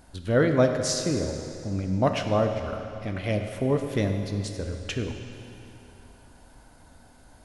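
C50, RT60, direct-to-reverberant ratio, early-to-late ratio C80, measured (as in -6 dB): 6.0 dB, 2.9 s, 5.0 dB, 6.5 dB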